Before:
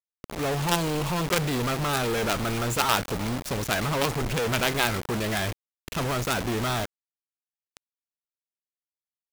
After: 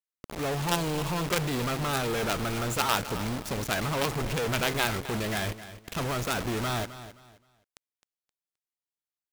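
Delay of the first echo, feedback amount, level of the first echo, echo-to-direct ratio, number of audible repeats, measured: 262 ms, 27%, -14.0 dB, -13.5 dB, 2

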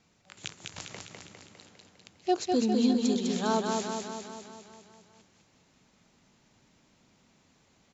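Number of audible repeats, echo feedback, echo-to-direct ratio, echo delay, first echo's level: 7, 59%, -1.5 dB, 202 ms, -3.5 dB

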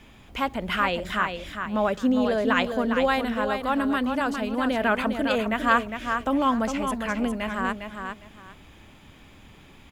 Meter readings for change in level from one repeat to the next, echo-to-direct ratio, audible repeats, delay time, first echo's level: -13.0 dB, -6.5 dB, 2, 406 ms, -6.5 dB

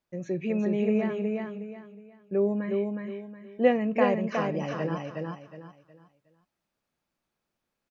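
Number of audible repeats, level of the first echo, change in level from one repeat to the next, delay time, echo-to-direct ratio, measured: 4, -3.5 dB, -10.5 dB, 365 ms, -3.0 dB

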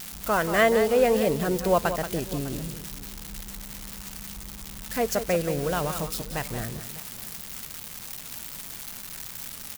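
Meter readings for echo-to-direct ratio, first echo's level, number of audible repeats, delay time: -9.5 dB, -10.0 dB, 2, 180 ms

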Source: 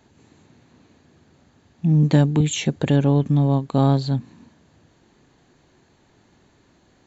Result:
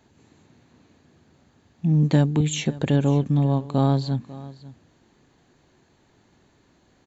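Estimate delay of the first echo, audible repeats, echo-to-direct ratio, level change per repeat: 546 ms, 1, -18.5 dB, no regular repeats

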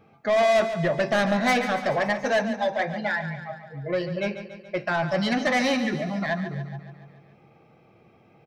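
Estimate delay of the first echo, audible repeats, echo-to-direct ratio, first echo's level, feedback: 142 ms, 6, -9.0 dB, -11.0 dB, 58%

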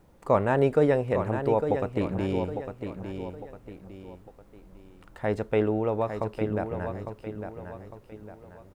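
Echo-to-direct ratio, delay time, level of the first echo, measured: -7.5 dB, 854 ms, -8.0 dB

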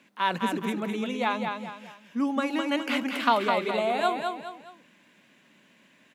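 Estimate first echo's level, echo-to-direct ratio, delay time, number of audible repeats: -5.0 dB, -4.5 dB, 208 ms, 3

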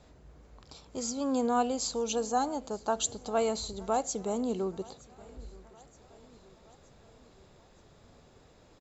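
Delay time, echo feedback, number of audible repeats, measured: 921 ms, 56%, 3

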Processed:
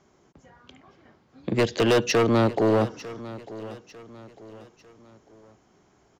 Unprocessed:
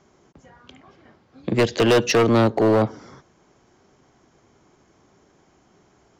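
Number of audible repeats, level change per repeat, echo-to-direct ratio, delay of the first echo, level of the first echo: 3, -8.0 dB, -16.5 dB, 899 ms, -17.0 dB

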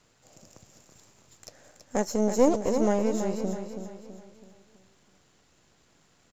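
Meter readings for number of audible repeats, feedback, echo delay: 4, 43%, 328 ms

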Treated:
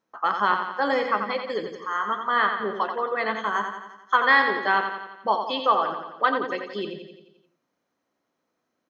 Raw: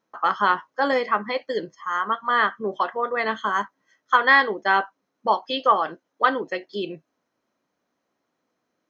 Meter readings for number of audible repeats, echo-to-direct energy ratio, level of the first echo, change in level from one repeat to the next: 6, -5.5 dB, -7.0 dB, -5.0 dB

